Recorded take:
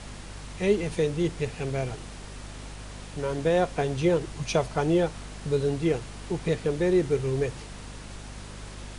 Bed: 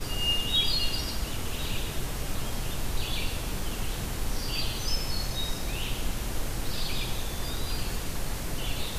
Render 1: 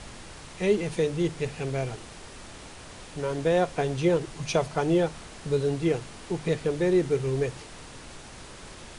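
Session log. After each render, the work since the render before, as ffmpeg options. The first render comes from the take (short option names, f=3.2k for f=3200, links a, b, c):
-af "bandreject=f=50:t=h:w=4,bandreject=f=100:t=h:w=4,bandreject=f=150:t=h:w=4,bandreject=f=200:t=h:w=4,bandreject=f=250:t=h:w=4"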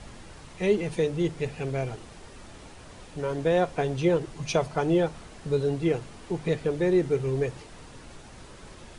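-af "afftdn=nr=6:nf=-45"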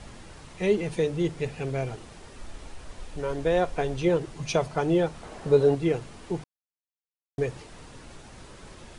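-filter_complex "[0:a]asplit=3[a][b][c];[a]afade=t=out:st=2.39:d=0.02[d];[b]asubboost=boost=6:cutoff=53,afade=t=in:st=2.39:d=0.02,afade=t=out:st=4.06:d=0.02[e];[c]afade=t=in:st=4.06:d=0.02[f];[d][e][f]amix=inputs=3:normalize=0,asettb=1/sr,asplit=3[g][h][i];[g]atrim=end=5.234[j];[h]atrim=start=5.23:end=5.75,asetpts=PTS-STARTPTS,afade=t=in:d=0.004:c=qsin,afade=t=out:st=0.516:d=0.004:c=qsin,equalizer=f=680:w=0.56:g=9[k];[i]atrim=start=5.746[l];[j][k]acrossfade=d=0.004:c1=hsin:c2=qsin[m];[m][l]acrossfade=d=0.004:c1=qsin:c2=hsin,asplit=3[n][o][p];[n]atrim=end=6.44,asetpts=PTS-STARTPTS,afade=t=out:st=6.436:d=0.004:c=hsin[q];[o]atrim=start=6.44:end=7.38,asetpts=PTS-STARTPTS,volume=0[r];[p]atrim=start=7.38,asetpts=PTS-STARTPTS,afade=t=in:d=0.004:c=hsin[s];[q][r][s]concat=n=3:v=0:a=1"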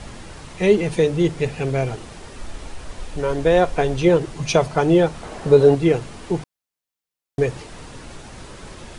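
-af "volume=8dB,alimiter=limit=-2dB:level=0:latency=1"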